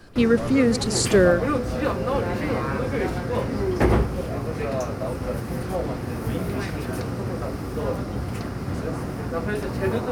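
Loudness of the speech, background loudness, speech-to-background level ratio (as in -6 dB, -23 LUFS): -20.5 LUFS, -26.5 LUFS, 6.0 dB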